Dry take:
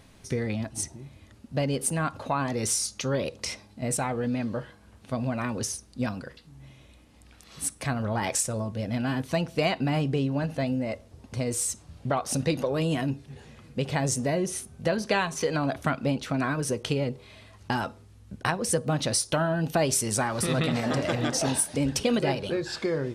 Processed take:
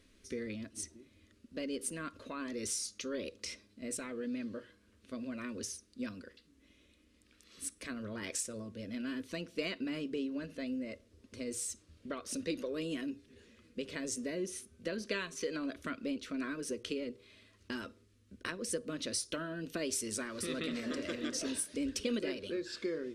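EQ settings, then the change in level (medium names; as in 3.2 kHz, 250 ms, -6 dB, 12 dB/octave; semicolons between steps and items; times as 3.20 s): treble shelf 11 kHz -9 dB; hum notches 60/120 Hz; static phaser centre 330 Hz, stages 4; -7.5 dB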